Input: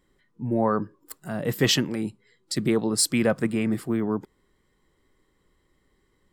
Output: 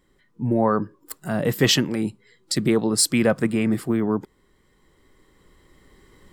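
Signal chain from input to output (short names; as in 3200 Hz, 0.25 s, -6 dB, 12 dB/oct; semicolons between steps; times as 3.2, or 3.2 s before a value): recorder AGC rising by 5.6 dB/s; gain +3 dB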